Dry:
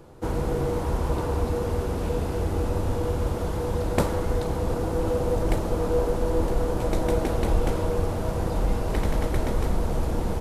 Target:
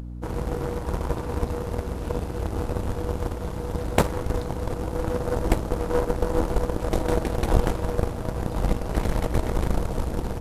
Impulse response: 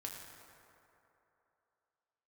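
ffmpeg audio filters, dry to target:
-af "aeval=exprs='0.562*(cos(1*acos(clip(val(0)/0.562,-1,1)))-cos(1*PI/2))+0.0631*(cos(7*acos(clip(val(0)/0.562,-1,1)))-cos(7*PI/2))':channel_layout=same,aeval=exprs='val(0)+0.0112*(sin(2*PI*60*n/s)+sin(2*PI*2*60*n/s)/2+sin(2*PI*3*60*n/s)/3+sin(2*PI*4*60*n/s)/4+sin(2*PI*5*60*n/s)/5)':channel_layout=same,acompressor=mode=upward:threshold=-40dB:ratio=2.5,volume=5dB"

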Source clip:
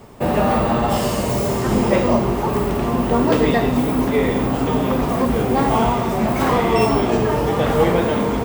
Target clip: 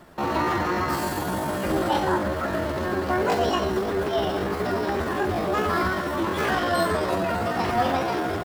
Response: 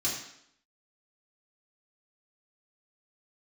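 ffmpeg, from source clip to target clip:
-af "asetrate=68011,aresample=44100,atempo=0.64842,volume=-6.5dB"

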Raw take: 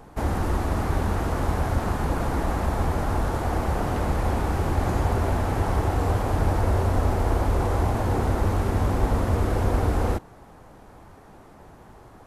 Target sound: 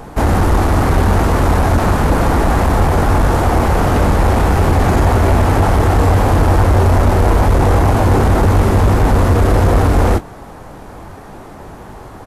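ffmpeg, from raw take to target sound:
ffmpeg -i in.wav -filter_complex "[0:a]asplit=2[link_01][link_02];[link_02]aeval=exprs='0.316*sin(PI/2*2.82*val(0)/0.316)':channel_layout=same,volume=-4dB[link_03];[link_01][link_03]amix=inputs=2:normalize=0,asplit=2[link_04][link_05];[link_05]adelay=21,volume=-11dB[link_06];[link_04][link_06]amix=inputs=2:normalize=0,volume=2.5dB" out.wav

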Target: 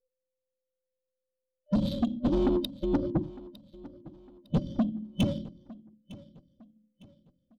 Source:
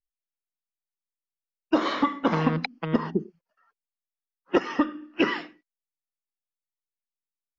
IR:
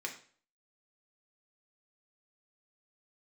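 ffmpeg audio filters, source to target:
-af "afftfilt=real='real(if(between(b,1,1008),(2*floor((b-1)/24)+1)*24-b,b),0)':imag='imag(if(between(b,1,1008),(2*floor((b-1)/24)+1)*24-b,b),0)*if(between(b,1,1008),-1,1)':win_size=2048:overlap=0.75,afftfilt=real='re*(1-between(b*sr/4096,600,3000))':imag='im*(1-between(b*sr/4096,600,3000))':win_size=4096:overlap=0.75,adynamicsmooth=sensitivity=4.5:basefreq=1400,asoftclip=type=tanh:threshold=-24dB,aecho=1:1:906|1812|2718:0.106|0.0392|0.0145,volume=4dB"

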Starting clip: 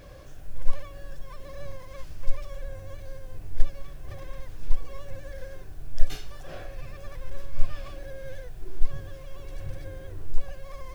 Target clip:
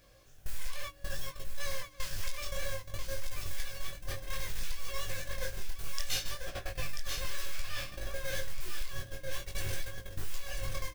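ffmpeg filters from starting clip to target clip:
ffmpeg -i in.wav -filter_complex "[0:a]acompressor=threshold=-21dB:ratio=2.5,agate=range=-22dB:threshold=-33dB:ratio=16:detection=peak,highshelf=frequency=2100:gain=11.5,bandreject=frequency=60:width_type=h:width=6,bandreject=frequency=120:width_type=h:width=6,bandreject=frequency=180:width_type=h:width=6,bandreject=frequency=240:width_type=h:width=6,bandreject=frequency=300:width_type=h:width=6,aecho=1:1:988:0.501,flanger=delay=18:depth=6.1:speed=0.61,acrossover=split=1100[link_01][link_02];[link_01]alimiter=level_in=11dB:limit=-24dB:level=0:latency=1:release=331,volume=-11dB[link_03];[link_03][link_02]amix=inputs=2:normalize=0,volume=9.5dB" out.wav

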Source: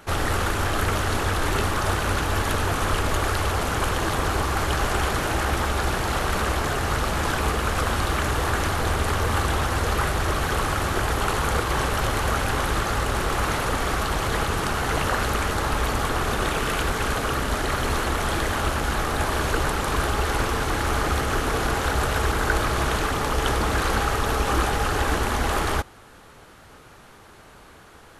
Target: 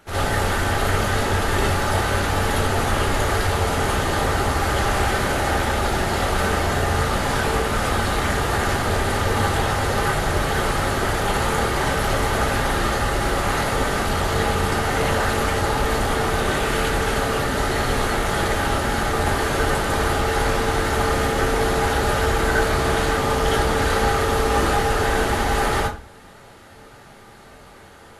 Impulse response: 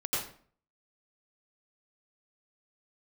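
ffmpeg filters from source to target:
-filter_complex "[0:a]bandreject=frequency=1100:width=14[link_01];[1:a]atrim=start_sample=2205,asetrate=66150,aresample=44100[link_02];[link_01][link_02]afir=irnorm=-1:irlink=0"

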